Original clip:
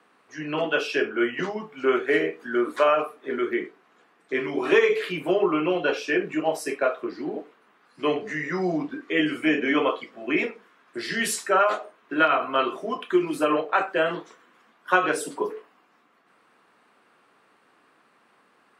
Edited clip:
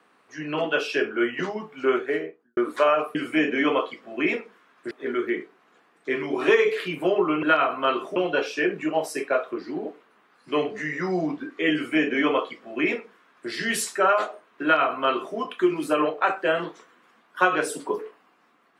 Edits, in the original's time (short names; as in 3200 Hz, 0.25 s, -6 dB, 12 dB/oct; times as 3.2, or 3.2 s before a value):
1.85–2.57 studio fade out
9.25–11.01 copy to 3.15
12.14–12.87 copy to 5.67